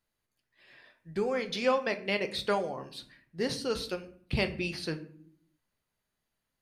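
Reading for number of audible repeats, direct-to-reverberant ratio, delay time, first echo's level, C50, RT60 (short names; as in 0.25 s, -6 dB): none, 7.5 dB, none, none, 14.0 dB, 0.60 s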